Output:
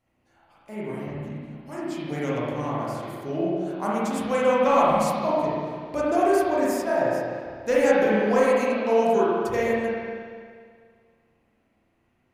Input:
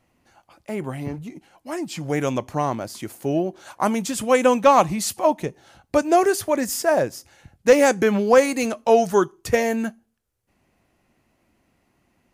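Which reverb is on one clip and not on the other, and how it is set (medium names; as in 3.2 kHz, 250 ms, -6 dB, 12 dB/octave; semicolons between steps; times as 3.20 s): spring tank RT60 2 s, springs 33/48 ms, chirp 45 ms, DRR -8 dB; trim -11.5 dB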